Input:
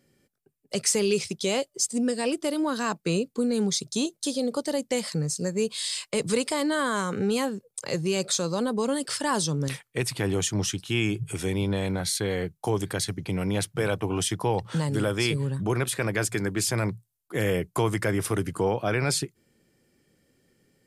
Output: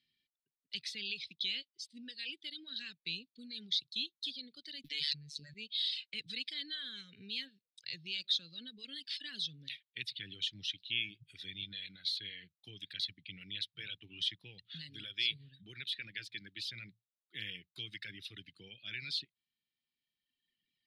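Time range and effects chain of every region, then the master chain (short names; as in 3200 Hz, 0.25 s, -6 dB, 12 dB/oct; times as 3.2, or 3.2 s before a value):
4.84–5.54 robotiser 146 Hz + fast leveller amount 100%
whole clip: pre-emphasis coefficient 0.9; reverb removal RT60 1.9 s; EQ curve 260 Hz 0 dB, 1000 Hz -29 dB, 1700 Hz +2 dB, 3800 Hz +14 dB, 7300 Hz -29 dB; gain -5 dB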